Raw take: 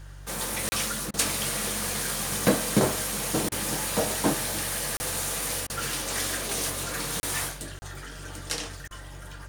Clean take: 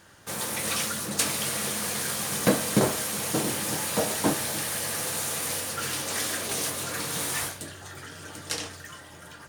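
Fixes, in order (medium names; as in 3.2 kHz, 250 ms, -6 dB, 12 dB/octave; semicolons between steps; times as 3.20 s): de-hum 47.7 Hz, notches 3; interpolate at 0.69/4.97/7.20/7.79 s, 30 ms; interpolate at 1.11/3.49/5.67/8.88 s, 27 ms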